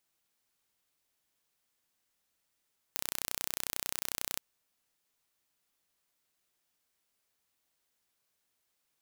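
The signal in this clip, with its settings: pulse train 31.1/s, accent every 0, -6.5 dBFS 1.42 s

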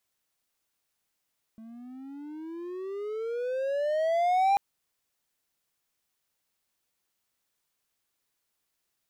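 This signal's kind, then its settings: gliding synth tone triangle, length 2.99 s, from 220 Hz, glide +22.5 st, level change +24 dB, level -17.5 dB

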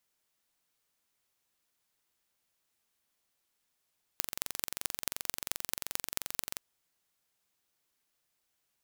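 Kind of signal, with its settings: pulse train 22.8/s, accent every 5, -2.5 dBFS 2.38 s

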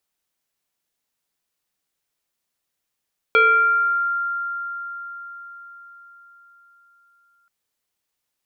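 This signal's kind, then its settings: FM tone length 4.13 s, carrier 1390 Hz, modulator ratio 0.68, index 1.1, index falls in 1.15 s exponential, decay 4.96 s, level -10.5 dB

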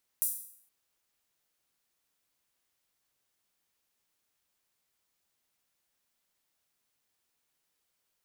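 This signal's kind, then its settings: open hi-hat length 0.47 s, high-pass 10000 Hz, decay 0.61 s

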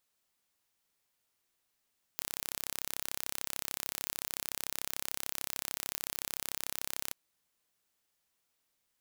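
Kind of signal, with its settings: pulse train 33.5/s, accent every 0, -8.5 dBFS 4.94 s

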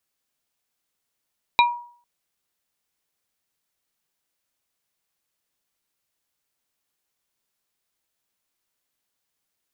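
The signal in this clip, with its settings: wood hit plate, length 0.45 s, lowest mode 959 Hz, modes 3, decay 0.50 s, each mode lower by 2 dB, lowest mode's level -11 dB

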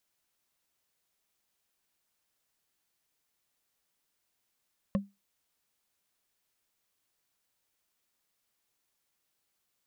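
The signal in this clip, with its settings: wood hit, lowest mode 199 Hz, decay 0.22 s, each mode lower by 5.5 dB, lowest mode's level -21.5 dB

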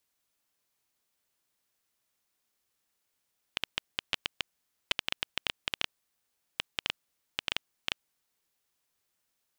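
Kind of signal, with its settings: random clicks 6.5/s -10 dBFS 4.94 s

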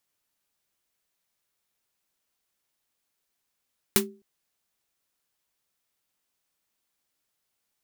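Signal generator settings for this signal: snare drum length 0.26 s, tones 210 Hz, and 390 Hz, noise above 790 Hz, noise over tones 6 dB, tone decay 0.35 s, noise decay 0.12 s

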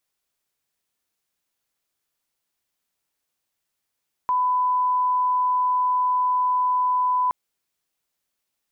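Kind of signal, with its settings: line-up tone -18 dBFS 3.02 s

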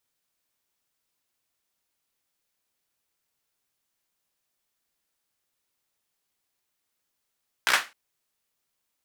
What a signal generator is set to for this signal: hand clap length 0.26 s, bursts 5, apart 16 ms, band 1600 Hz, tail 0.26 s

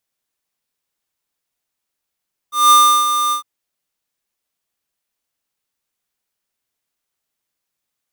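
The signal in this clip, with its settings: ADSR square 1200 Hz, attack 0.188 s, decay 0.34 s, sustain -9 dB, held 0.80 s, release 0.105 s -8 dBFS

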